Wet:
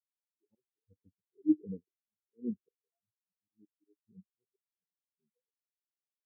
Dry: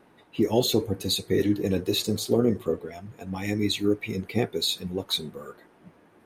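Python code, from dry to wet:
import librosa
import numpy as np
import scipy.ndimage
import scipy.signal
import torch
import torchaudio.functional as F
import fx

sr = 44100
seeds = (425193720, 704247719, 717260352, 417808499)

y = scipy.signal.sosfilt(scipy.signal.butter(6, 1600.0, 'lowpass', fs=sr, output='sos'), x)
y = fx.auto_swell(y, sr, attack_ms=241.0)
y = fx.spectral_expand(y, sr, expansion=4.0)
y = y * 10.0 ** (-3.0 / 20.0)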